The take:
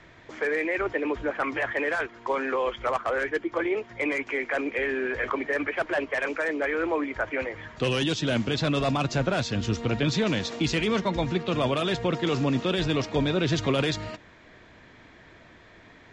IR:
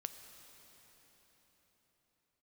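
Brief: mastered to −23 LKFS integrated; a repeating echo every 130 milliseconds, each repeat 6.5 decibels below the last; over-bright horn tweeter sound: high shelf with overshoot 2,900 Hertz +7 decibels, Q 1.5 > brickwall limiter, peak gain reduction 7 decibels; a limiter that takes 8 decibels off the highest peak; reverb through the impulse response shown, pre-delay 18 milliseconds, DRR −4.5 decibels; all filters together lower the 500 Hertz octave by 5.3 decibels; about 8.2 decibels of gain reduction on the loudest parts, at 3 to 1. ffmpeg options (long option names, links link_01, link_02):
-filter_complex "[0:a]equalizer=frequency=500:width_type=o:gain=-6.5,acompressor=threshold=-34dB:ratio=3,alimiter=level_in=5.5dB:limit=-24dB:level=0:latency=1,volume=-5.5dB,aecho=1:1:130|260|390|520|650|780:0.473|0.222|0.105|0.0491|0.0231|0.0109,asplit=2[link_01][link_02];[1:a]atrim=start_sample=2205,adelay=18[link_03];[link_02][link_03]afir=irnorm=-1:irlink=0,volume=7dB[link_04];[link_01][link_04]amix=inputs=2:normalize=0,highshelf=frequency=2900:width_type=q:width=1.5:gain=7,volume=8.5dB,alimiter=limit=-13dB:level=0:latency=1"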